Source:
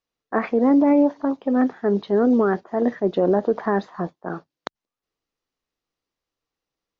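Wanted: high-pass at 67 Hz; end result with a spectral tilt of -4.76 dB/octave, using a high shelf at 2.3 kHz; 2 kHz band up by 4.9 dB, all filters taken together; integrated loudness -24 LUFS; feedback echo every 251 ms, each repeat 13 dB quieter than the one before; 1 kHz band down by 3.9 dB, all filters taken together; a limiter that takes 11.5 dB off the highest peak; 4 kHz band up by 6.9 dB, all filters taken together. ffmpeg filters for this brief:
-af "highpass=67,equalizer=f=1000:t=o:g=-7,equalizer=f=2000:t=o:g=8.5,highshelf=f=2300:g=-4,equalizer=f=4000:t=o:g=9,alimiter=limit=0.0944:level=0:latency=1,aecho=1:1:251|502|753:0.224|0.0493|0.0108,volume=1.88"

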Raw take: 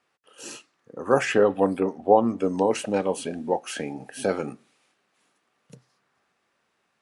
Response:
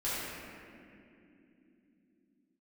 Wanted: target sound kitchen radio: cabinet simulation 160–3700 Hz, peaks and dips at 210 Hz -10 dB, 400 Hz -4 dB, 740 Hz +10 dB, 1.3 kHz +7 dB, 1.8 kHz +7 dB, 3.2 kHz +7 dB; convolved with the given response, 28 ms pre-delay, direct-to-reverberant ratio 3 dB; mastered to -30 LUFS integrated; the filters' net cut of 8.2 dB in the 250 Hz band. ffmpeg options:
-filter_complex "[0:a]equalizer=f=250:t=o:g=-5.5,asplit=2[s0][s1];[1:a]atrim=start_sample=2205,adelay=28[s2];[s1][s2]afir=irnorm=-1:irlink=0,volume=0.299[s3];[s0][s3]amix=inputs=2:normalize=0,highpass=160,equalizer=f=210:t=q:w=4:g=-10,equalizer=f=400:t=q:w=4:g=-4,equalizer=f=740:t=q:w=4:g=10,equalizer=f=1300:t=q:w=4:g=7,equalizer=f=1800:t=q:w=4:g=7,equalizer=f=3200:t=q:w=4:g=7,lowpass=f=3700:w=0.5412,lowpass=f=3700:w=1.3066,volume=0.355"

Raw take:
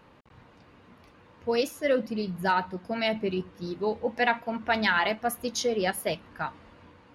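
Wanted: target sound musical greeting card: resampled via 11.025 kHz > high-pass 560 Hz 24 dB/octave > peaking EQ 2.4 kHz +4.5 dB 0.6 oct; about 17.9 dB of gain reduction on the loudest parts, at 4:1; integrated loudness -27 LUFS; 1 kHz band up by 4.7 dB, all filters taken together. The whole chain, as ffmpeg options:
-af "equalizer=f=1000:t=o:g=6,acompressor=threshold=0.0112:ratio=4,aresample=11025,aresample=44100,highpass=f=560:w=0.5412,highpass=f=560:w=1.3066,equalizer=f=2400:t=o:w=0.6:g=4.5,volume=5.96"

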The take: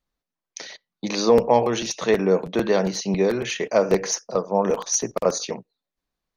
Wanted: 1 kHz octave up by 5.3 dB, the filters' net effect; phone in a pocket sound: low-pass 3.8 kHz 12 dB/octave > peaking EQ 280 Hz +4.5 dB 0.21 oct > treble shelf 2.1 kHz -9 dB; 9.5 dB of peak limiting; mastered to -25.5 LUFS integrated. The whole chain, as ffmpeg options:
-af "equalizer=f=1000:t=o:g=8.5,alimiter=limit=0.335:level=0:latency=1,lowpass=3800,equalizer=f=280:t=o:w=0.21:g=4.5,highshelf=f=2100:g=-9,volume=0.794"

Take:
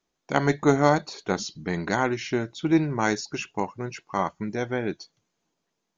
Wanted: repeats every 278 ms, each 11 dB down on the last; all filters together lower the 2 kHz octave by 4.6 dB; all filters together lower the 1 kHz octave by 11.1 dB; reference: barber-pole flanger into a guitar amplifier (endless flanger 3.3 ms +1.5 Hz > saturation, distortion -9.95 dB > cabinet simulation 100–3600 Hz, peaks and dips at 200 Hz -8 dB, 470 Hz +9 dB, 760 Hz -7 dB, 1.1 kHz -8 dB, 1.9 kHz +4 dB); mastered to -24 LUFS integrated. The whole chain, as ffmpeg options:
-filter_complex "[0:a]equalizer=f=1000:t=o:g=-7,equalizer=f=2000:t=o:g=-4.5,aecho=1:1:278|556|834:0.282|0.0789|0.0221,asplit=2[s0][s1];[s1]adelay=3.3,afreqshift=1.5[s2];[s0][s2]amix=inputs=2:normalize=1,asoftclip=threshold=0.0631,highpass=100,equalizer=f=200:t=q:w=4:g=-8,equalizer=f=470:t=q:w=4:g=9,equalizer=f=760:t=q:w=4:g=-7,equalizer=f=1100:t=q:w=4:g=-8,equalizer=f=1900:t=q:w=4:g=4,lowpass=f=3600:w=0.5412,lowpass=f=3600:w=1.3066,volume=2.82"

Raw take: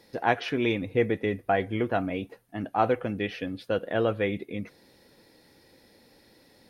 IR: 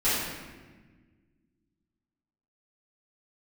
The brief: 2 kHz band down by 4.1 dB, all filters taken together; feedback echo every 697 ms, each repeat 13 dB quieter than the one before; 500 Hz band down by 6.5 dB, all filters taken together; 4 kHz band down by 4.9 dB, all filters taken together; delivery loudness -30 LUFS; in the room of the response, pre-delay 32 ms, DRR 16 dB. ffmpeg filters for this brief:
-filter_complex "[0:a]equalizer=f=500:t=o:g=-8,equalizer=f=2000:t=o:g=-3.5,equalizer=f=4000:t=o:g=-5,aecho=1:1:697|1394|2091:0.224|0.0493|0.0108,asplit=2[s0][s1];[1:a]atrim=start_sample=2205,adelay=32[s2];[s1][s2]afir=irnorm=-1:irlink=0,volume=0.0335[s3];[s0][s3]amix=inputs=2:normalize=0,volume=1.33"

